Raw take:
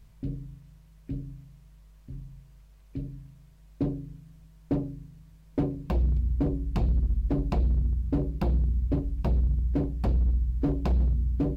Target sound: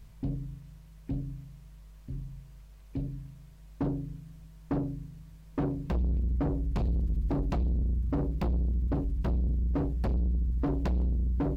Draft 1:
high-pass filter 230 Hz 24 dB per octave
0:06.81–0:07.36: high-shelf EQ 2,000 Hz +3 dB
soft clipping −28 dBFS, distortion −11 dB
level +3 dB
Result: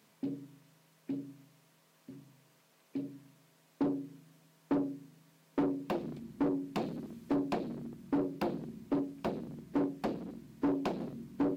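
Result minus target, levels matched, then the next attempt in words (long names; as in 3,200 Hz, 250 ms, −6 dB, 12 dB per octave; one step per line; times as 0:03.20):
250 Hz band +5.0 dB
0:06.81–0:07.36: high-shelf EQ 2,000 Hz +3 dB
soft clipping −28 dBFS, distortion −10 dB
level +3 dB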